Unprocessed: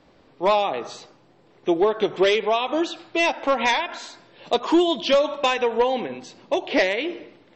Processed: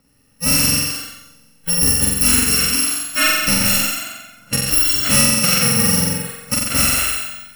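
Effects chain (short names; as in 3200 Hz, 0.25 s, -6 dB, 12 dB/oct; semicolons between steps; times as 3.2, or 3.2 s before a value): FFT order left unsorted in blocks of 128 samples; 3.78–4.67 low-pass opened by the level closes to 1000 Hz, open at -21 dBFS; high shelf 5600 Hz -8 dB; in parallel at -1.5 dB: compressor, threshold -28 dBFS, peak gain reduction 9.5 dB; on the sum: small resonant body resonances 290/1800 Hz, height 14 dB, ringing for 30 ms; on a send: flutter echo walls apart 7.7 m, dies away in 1.5 s; on the sum: spectral noise reduction 11 dB; gain +3 dB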